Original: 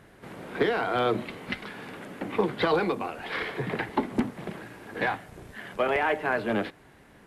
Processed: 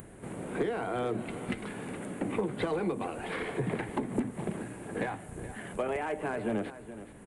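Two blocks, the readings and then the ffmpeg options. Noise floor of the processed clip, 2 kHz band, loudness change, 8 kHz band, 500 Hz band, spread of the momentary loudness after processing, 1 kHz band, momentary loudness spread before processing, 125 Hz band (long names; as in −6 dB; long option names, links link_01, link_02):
−50 dBFS, −9.0 dB, −6.0 dB, can't be measured, −5.0 dB, 9 LU, −7.5 dB, 15 LU, −0.5 dB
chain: -filter_complex "[0:a]asoftclip=type=hard:threshold=-18dB,acompressor=threshold=-30dB:ratio=6,asplit=2[link_01][link_02];[link_02]aecho=0:1:422:0.211[link_03];[link_01][link_03]amix=inputs=2:normalize=0,aresample=22050,aresample=44100,tiltshelf=frequency=970:gain=6.5,acompressor=mode=upward:threshold=-44dB:ratio=2.5,aexciter=amount=11.6:drive=4.3:freq=7500,equalizer=frequency=2500:width_type=o:width=0.71:gain=3.5,volume=-2dB"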